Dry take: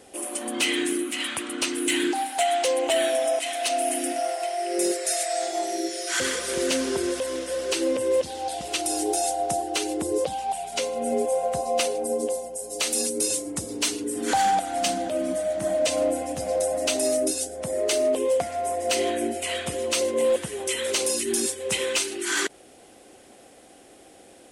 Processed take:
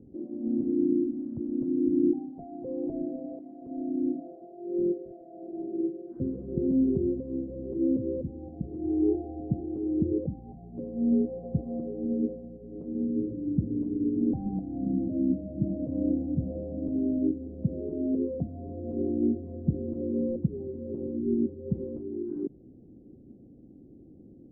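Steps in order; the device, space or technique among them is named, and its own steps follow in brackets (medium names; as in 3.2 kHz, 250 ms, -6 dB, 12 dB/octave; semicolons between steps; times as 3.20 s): 8.83–9.40 s: comb 2.6 ms, depth 76%; the neighbour's flat through the wall (low-pass 280 Hz 24 dB/octave; peaking EQ 140 Hz +4 dB 0.77 oct); trim +8 dB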